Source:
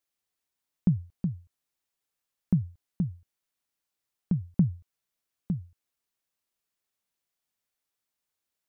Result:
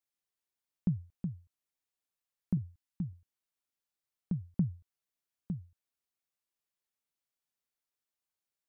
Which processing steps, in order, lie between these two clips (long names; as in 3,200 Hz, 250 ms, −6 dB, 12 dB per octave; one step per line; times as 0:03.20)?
0:02.57–0:03.13: elliptic band-stop filter 320–800 Hz
level −7 dB